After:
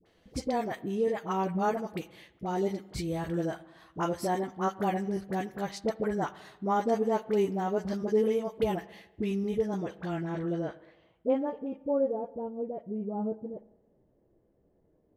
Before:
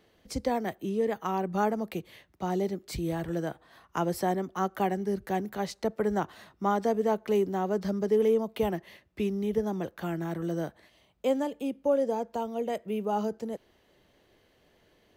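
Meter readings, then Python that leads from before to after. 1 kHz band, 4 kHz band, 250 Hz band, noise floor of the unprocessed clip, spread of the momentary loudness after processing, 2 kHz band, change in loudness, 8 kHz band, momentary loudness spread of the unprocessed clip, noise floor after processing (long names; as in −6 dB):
−1.0 dB, −2.0 dB, −1.0 dB, −66 dBFS, 9 LU, −1.5 dB, −1.0 dB, −2.0 dB, 10 LU, −69 dBFS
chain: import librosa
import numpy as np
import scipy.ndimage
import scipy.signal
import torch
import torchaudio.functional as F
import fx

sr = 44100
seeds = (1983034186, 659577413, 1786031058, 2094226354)

y = fx.filter_sweep_lowpass(x, sr, from_hz=11000.0, to_hz=490.0, start_s=9.45, end_s=12.46, q=0.71)
y = fx.dispersion(y, sr, late='highs', ms=59.0, hz=720.0)
y = fx.chorus_voices(y, sr, voices=4, hz=0.15, base_ms=11, depth_ms=5.0, mix_pct=25)
y = fx.rev_spring(y, sr, rt60_s=1.1, pass_ms=(46, 56), chirp_ms=25, drr_db=17.5)
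y = F.gain(torch.from_numpy(y), 1.0).numpy()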